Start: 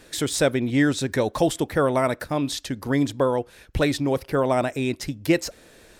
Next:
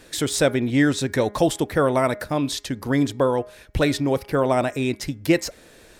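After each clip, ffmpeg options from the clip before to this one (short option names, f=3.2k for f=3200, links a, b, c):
-af "bandreject=f=206.1:t=h:w=4,bandreject=f=412.2:t=h:w=4,bandreject=f=618.3:t=h:w=4,bandreject=f=824.4:t=h:w=4,bandreject=f=1.0305k:t=h:w=4,bandreject=f=1.2366k:t=h:w=4,bandreject=f=1.4427k:t=h:w=4,bandreject=f=1.6488k:t=h:w=4,bandreject=f=1.8549k:t=h:w=4,bandreject=f=2.061k:t=h:w=4,bandreject=f=2.2671k:t=h:w=4,volume=1.5dB"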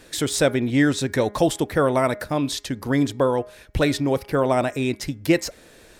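-af anull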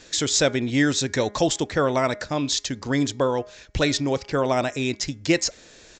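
-af "crystalizer=i=3:c=0,aresample=16000,aresample=44100,volume=-2.5dB"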